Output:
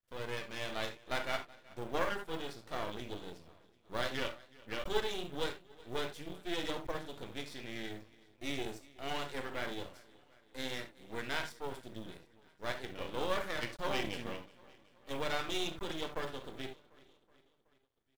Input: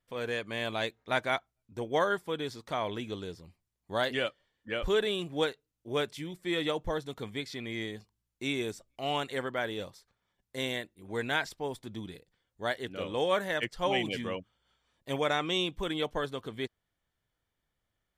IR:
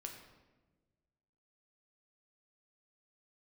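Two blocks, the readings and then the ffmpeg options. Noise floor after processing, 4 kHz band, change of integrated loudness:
−70 dBFS, −6.0 dB, −6.5 dB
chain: -filter_complex "[0:a]aecho=1:1:373|746|1119|1492:0.0794|0.0445|0.0249|0.0139[link_01];[1:a]atrim=start_sample=2205,atrim=end_sample=3969[link_02];[link_01][link_02]afir=irnorm=-1:irlink=0,aeval=exprs='max(val(0),0)':channel_layout=same,acrusher=bits=7:mode=log:mix=0:aa=0.000001,volume=2dB"

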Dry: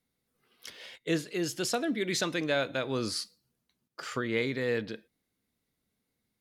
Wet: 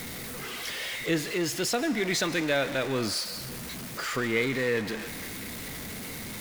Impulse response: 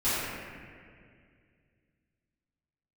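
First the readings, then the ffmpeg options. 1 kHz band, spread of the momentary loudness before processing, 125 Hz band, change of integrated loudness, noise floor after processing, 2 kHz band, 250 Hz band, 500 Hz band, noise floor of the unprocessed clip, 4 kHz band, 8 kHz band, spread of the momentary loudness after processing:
+4.0 dB, 16 LU, +3.5 dB, +1.5 dB, −38 dBFS, +5.5 dB, +3.0 dB, +2.5 dB, −83 dBFS, +4.5 dB, +5.5 dB, 10 LU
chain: -filter_complex "[0:a]aeval=exprs='val(0)+0.5*0.0251*sgn(val(0))':channel_layout=same,equalizer=frequency=2000:width=3.1:gain=4.5,asplit=2[link_01][link_02];[link_02]highpass=frequency=620:width=0.5412,highpass=frequency=620:width=1.3066[link_03];[1:a]atrim=start_sample=2205,adelay=128[link_04];[link_03][link_04]afir=irnorm=-1:irlink=0,volume=-23.5dB[link_05];[link_01][link_05]amix=inputs=2:normalize=0"

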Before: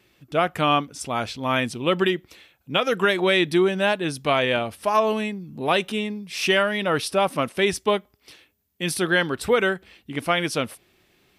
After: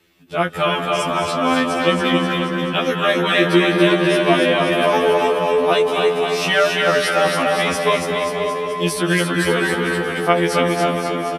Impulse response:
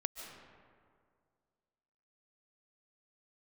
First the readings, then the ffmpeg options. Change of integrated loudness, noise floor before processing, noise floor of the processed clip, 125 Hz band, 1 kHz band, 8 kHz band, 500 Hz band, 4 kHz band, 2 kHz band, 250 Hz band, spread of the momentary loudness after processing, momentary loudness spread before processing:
+5.5 dB, −65 dBFS, −24 dBFS, +7.0 dB, +6.0 dB, +5.0 dB, +6.5 dB, +5.0 dB, +5.5 dB, +6.5 dB, 6 LU, 8 LU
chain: -filter_complex "[0:a]aecho=1:1:280|532|758.8|962.9|1147:0.631|0.398|0.251|0.158|0.1[link_01];[1:a]atrim=start_sample=2205,asetrate=30429,aresample=44100[link_02];[link_01][link_02]afir=irnorm=-1:irlink=0,afftfilt=real='re*2*eq(mod(b,4),0)':imag='im*2*eq(mod(b,4),0)':win_size=2048:overlap=0.75,volume=4dB"

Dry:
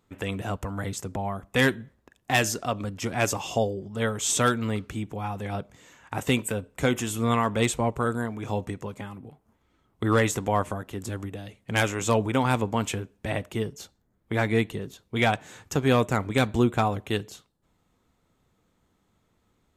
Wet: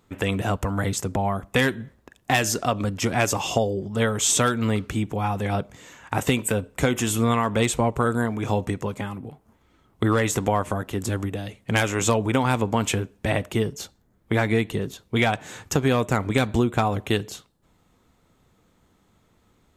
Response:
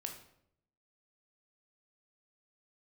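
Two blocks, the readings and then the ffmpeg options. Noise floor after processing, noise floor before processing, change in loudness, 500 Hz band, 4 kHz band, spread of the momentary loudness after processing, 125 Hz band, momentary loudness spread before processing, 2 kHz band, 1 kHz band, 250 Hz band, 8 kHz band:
−63 dBFS, −70 dBFS, +3.0 dB, +2.5 dB, +3.0 dB, 9 LU, +3.5 dB, 12 LU, +2.0 dB, +2.5 dB, +3.0 dB, +5.0 dB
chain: -af "acompressor=threshold=-24dB:ratio=6,volume=7dB"

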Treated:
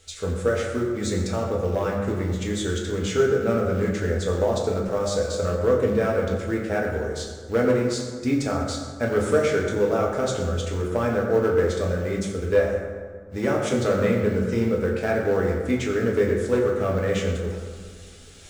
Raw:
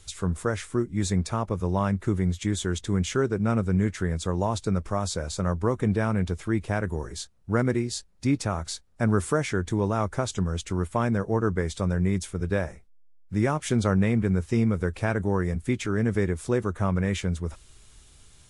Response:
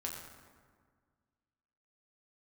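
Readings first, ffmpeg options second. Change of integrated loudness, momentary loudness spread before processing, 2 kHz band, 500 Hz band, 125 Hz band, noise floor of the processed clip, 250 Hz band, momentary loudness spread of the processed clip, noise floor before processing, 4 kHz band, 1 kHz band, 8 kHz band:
+3.0 dB, 5 LU, +3.5 dB, +8.0 dB, −2.0 dB, −40 dBFS, 0.0 dB, 7 LU, −53 dBFS, +2.5 dB, +1.0 dB, 0.0 dB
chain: -filter_complex "[0:a]asplit=2[link_01][link_02];[link_02]acrusher=bits=3:mode=log:mix=0:aa=0.000001,volume=-10dB[link_03];[link_01][link_03]amix=inputs=2:normalize=0,equalizer=frequency=500:width_type=o:width=0.33:gain=9,equalizer=frequency=1000:width_type=o:width=0.33:gain=-11,equalizer=frequency=10000:width_type=o:width=0.33:gain=-10,areverse,acompressor=mode=upward:threshold=-34dB:ratio=2.5,areverse,volume=11dB,asoftclip=hard,volume=-11dB,bass=frequency=250:gain=-9,treble=frequency=4000:gain=-1[link_04];[1:a]atrim=start_sample=2205[link_05];[link_04][link_05]afir=irnorm=-1:irlink=0,volume=1.5dB"

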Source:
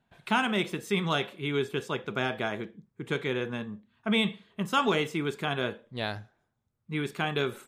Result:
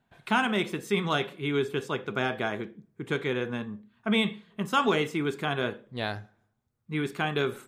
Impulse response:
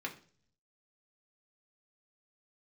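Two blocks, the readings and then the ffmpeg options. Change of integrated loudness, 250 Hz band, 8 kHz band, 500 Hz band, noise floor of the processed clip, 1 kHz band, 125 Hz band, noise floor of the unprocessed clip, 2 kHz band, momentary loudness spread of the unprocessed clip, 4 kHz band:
+1.0 dB, +1.5 dB, 0.0 dB, +1.5 dB, −74 dBFS, +1.5 dB, +0.5 dB, −77 dBFS, +1.0 dB, 10 LU, −0.5 dB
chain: -filter_complex "[0:a]asplit=2[link_01][link_02];[1:a]atrim=start_sample=2205,lowpass=2400[link_03];[link_02][link_03]afir=irnorm=-1:irlink=0,volume=-12dB[link_04];[link_01][link_04]amix=inputs=2:normalize=0"

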